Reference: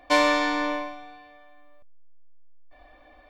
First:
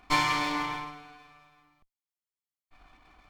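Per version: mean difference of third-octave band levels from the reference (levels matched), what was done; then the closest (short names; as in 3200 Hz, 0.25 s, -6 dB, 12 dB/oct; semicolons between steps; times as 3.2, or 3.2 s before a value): 6.0 dB: minimum comb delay 0.93 ms; gain -3 dB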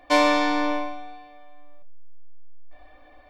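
1.0 dB: shoebox room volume 120 m³, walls furnished, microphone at 0.45 m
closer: second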